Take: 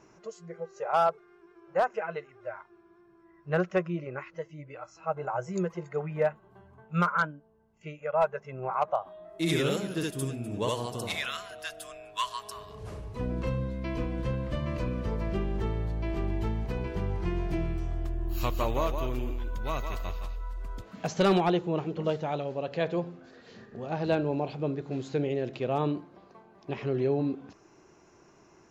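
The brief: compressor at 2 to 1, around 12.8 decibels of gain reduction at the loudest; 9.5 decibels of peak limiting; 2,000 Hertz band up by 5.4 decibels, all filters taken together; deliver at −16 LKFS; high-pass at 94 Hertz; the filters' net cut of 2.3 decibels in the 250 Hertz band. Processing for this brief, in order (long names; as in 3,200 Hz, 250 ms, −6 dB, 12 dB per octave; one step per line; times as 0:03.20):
high-pass filter 94 Hz
parametric band 250 Hz −3.5 dB
parametric band 2,000 Hz +7.5 dB
downward compressor 2 to 1, threshold −43 dBFS
level +27.5 dB
brickwall limiter −4 dBFS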